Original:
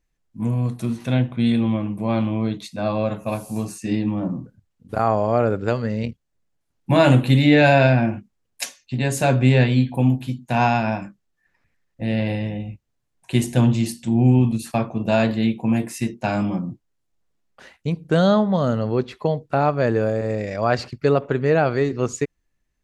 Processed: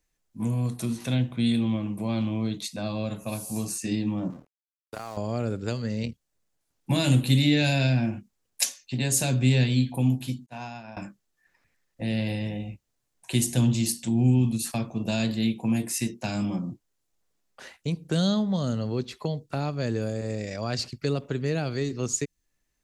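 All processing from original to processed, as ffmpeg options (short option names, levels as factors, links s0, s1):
-filter_complex "[0:a]asettb=1/sr,asplit=3[s0][s1][s2];[s0]atrim=end=4.304[s3];[s1]atrim=start=4.3:end=5.17,asetpts=PTS-STARTPTS,afade=t=in:d=0.004:c=qsin,afade=t=out:st=0.866:d=0.004:c=qsin,lowshelf=f=440:g=-10,acompressor=threshold=0.0562:ratio=3:attack=3.2:release=140:knee=1:detection=peak,aeval=exprs='sgn(val(0))*max(abs(val(0))-0.00596,0)':c=same[s4];[s2]atrim=start=5.166[s5];[s3][s4]acrossfade=d=0.004:c1=hsin:c2=qsin[s6];[s6][s5]acrossfade=d=0.004:c1=qsin:c2=hsin,asettb=1/sr,asplit=3[s7][s8][s9];[s7]atrim=end=10.464[s10];[s8]atrim=start=10.46:end=10.97,asetpts=PTS-STARTPTS,afade=t=in:d=0.004:c=qsin,afade=t=out:st=0.506:d=0.004:c=qsin,agate=range=0.0224:threshold=0.282:ratio=3:release=100:detection=peak,lowpass=9800,acompressor=threshold=0.0224:ratio=2:attack=3.2:release=140:knee=1:detection=peak[s11];[s9]atrim=start=10.966[s12];[s10][s11]acrossfade=d=0.004:c1=hsin:c2=qsin[s13];[s13][s12]acrossfade=d=0.004:c1=qsin:c2=hsin,bass=f=250:g=-5,treble=f=4000:g=6,acrossover=split=270|3000[s14][s15][s16];[s15]acompressor=threshold=0.0126:ratio=3[s17];[s14][s17][s16]amix=inputs=3:normalize=0"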